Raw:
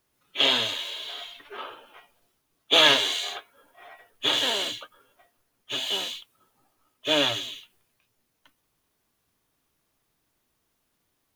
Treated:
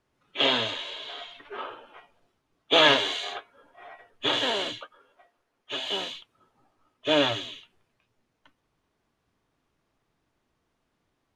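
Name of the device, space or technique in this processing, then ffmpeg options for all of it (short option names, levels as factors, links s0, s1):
through cloth: -filter_complex "[0:a]lowpass=8200,highshelf=f=3300:g=-12,asettb=1/sr,asplit=3[s0][s1][s2];[s0]atrim=end=0.444[s3];[s1]atrim=start=0.44:end=1.31,asetpts=PTS-STARTPTS,afade=t=in:d=0.004:c=qsin,afade=t=out:st=0.866:d=0.004:c=qsin,lowpass=f=9500:w=0.5412,lowpass=f=9500:w=1.3066[s4];[s2]atrim=start=1.306[s5];[s3][s4]acrossfade=d=0.004:c1=hsin:c2=qsin[s6];[s6][s5]acrossfade=d=0.004:c1=qsin:c2=hsin,asettb=1/sr,asplit=3[s7][s8][s9];[s7]atrim=end=4.814[s10];[s8]atrim=start=4.81:end=5.85,asetpts=PTS-STARTPTS,afade=t=in:d=0.004:c=qsin,afade=t=out:st=1.036:d=0.004:c=qsin,bass=f=250:g=-10,treble=f=4000:g=-1[s11];[s9]atrim=start=5.846[s12];[s10][s11]acrossfade=d=0.004:c1=hsin:c2=qsin[s13];[s13][s12]acrossfade=d=0.004:c1=qsin:c2=hsin,volume=1.41"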